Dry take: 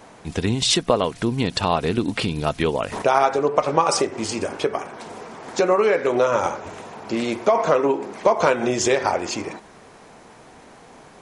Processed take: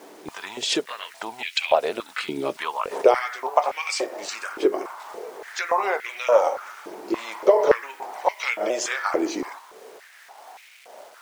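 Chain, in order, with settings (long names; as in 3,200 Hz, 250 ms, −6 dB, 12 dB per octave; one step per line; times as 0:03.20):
pitch shifter swept by a sawtooth −2 semitones, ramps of 870 ms
bit reduction 8 bits
high-pass on a step sequencer 3.5 Hz 340–2,300 Hz
level −3.5 dB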